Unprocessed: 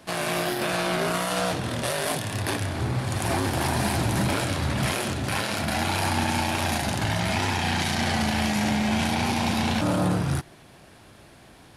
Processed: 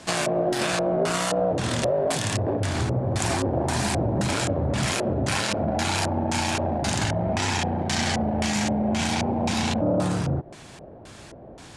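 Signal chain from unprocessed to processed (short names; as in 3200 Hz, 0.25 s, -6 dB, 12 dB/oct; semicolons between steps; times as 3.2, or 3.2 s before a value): compressor, threshold -27 dBFS, peak gain reduction 7.5 dB; LFO low-pass square 1.9 Hz 570–7500 Hz; gain +5.5 dB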